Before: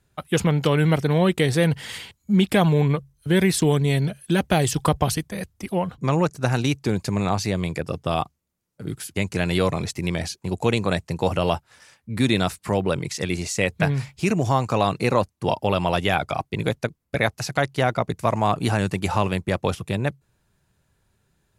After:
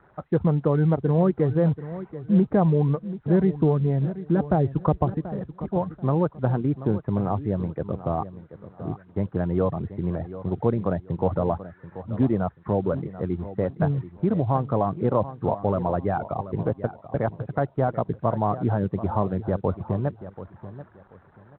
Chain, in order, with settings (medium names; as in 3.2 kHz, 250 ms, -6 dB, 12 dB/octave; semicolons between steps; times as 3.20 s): zero-crossing glitches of -21 dBFS; reverb removal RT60 0.51 s; Bessel low-pass 840 Hz, order 8; feedback delay 734 ms, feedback 25%, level -14 dB; µ-law 64 kbps 8 kHz